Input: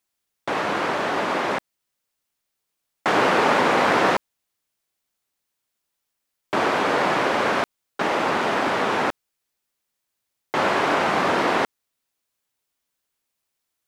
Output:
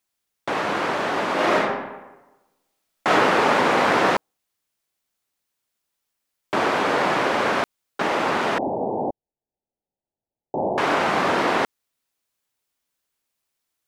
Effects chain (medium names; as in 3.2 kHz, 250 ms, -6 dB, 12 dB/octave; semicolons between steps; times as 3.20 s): 1.34–3.10 s: reverb throw, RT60 1.1 s, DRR -4 dB; 8.58–10.78 s: steep low-pass 870 Hz 72 dB/octave